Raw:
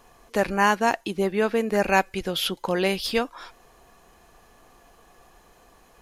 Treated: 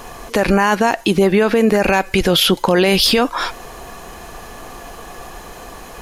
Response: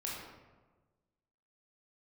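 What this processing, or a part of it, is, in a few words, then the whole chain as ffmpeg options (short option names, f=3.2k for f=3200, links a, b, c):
loud club master: -af "acompressor=threshold=-24dB:ratio=2,asoftclip=type=hard:threshold=-14dB,alimiter=level_in=24.5dB:limit=-1dB:release=50:level=0:latency=1,volume=-4dB"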